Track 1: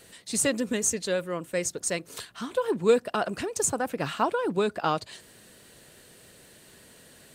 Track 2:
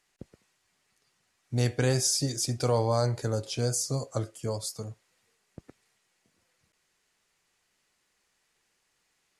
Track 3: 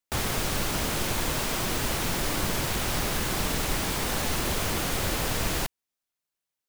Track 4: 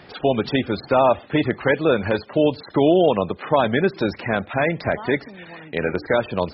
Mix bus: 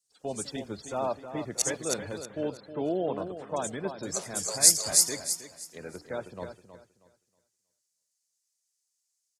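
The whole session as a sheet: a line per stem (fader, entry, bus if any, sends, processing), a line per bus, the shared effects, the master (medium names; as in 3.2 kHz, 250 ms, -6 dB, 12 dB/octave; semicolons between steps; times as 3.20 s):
-18.5 dB, 0.00 s, no send, no echo send, low-pass 11 kHz 24 dB/octave; treble shelf 8.6 kHz -5.5 dB; sawtooth tremolo in dB decaying 0.63 Hz, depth 24 dB
-2.0 dB, 0.00 s, muted 1.62–4.03 s, no send, echo send -3 dB, steep high-pass 530 Hz
mute
-16.0 dB, 0.00 s, no send, echo send -7.5 dB, expander -36 dBFS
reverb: none
echo: feedback delay 318 ms, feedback 43%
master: resonant high shelf 4.2 kHz +13 dB, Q 1.5; three bands expanded up and down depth 70%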